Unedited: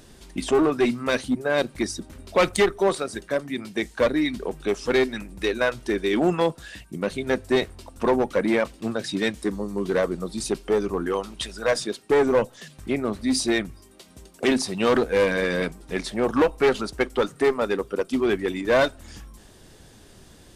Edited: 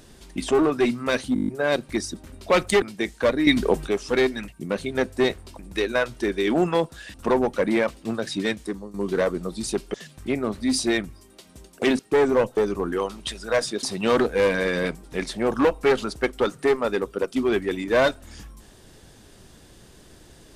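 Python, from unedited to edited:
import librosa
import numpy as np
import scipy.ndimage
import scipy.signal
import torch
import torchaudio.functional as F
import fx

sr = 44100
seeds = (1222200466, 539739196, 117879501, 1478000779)

y = fx.edit(x, sr, fx.stutter(start_s=1.34, slice_s=0.02, count=8),
    fx.cut(start_s=2.68, length_s=0.91),
    fx.clip_gain(start_s=4.24, length_s=0.4, db=9.0),
    fx.move(start_s=6.8, length_s=1.11, to_s=5.25),
    fx.fade_out_to(start_s=9.04, length_s=0.67, curve='qsin', floor_db=-13.0),
    fx.swap(start_s=10.71, length_s=1.26, other_s=12.55, other_length_s=2.05), tone=tone)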